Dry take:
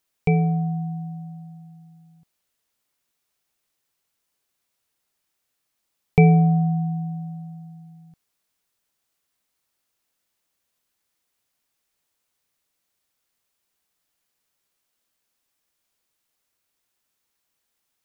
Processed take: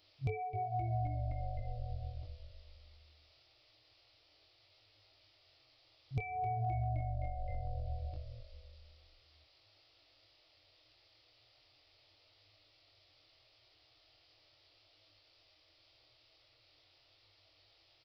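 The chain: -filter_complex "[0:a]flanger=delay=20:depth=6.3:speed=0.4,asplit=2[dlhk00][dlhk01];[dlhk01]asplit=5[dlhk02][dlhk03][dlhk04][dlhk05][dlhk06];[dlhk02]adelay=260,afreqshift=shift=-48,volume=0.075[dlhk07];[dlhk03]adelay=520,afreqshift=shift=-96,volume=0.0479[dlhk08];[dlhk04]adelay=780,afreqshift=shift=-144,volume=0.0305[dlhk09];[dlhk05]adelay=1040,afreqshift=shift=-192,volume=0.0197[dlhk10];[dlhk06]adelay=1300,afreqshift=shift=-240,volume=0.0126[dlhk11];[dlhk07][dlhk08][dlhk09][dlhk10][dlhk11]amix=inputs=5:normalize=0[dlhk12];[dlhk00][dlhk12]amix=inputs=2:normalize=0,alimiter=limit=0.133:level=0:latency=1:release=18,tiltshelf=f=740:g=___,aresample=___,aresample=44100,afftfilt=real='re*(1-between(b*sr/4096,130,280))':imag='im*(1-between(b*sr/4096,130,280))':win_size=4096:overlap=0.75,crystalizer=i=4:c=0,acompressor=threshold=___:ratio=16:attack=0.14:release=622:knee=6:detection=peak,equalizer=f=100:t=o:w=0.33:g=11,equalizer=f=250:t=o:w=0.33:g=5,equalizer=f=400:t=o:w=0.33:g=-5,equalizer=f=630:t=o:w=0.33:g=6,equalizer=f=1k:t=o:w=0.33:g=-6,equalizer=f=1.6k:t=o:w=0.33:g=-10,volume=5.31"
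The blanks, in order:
3.5, 11025, 0.00501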